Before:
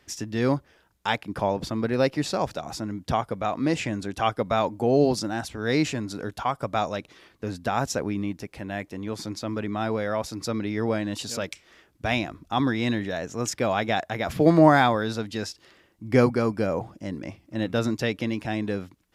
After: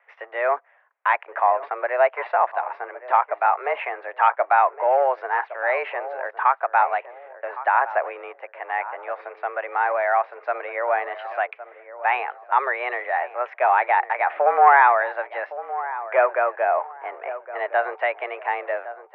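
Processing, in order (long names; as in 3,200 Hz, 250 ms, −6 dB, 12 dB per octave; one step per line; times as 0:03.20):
leveller curve on the samples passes 1
in parallel at −1.5 dB: brickwall limiter −12 dBFS, peak gain reduction 8 dB
on the sum: feedback echo with a low-pass in the loop 1,113 ms, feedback 30%, low-pass 1,200 Hz, level −13 dB
single-sideband voice off tune +130 Hz 500–2,100 Hz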